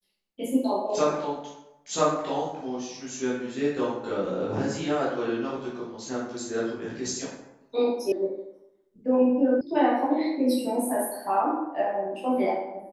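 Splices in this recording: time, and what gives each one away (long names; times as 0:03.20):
0:08.12: cut off before it has died away
0:09.61: cut off before it has died away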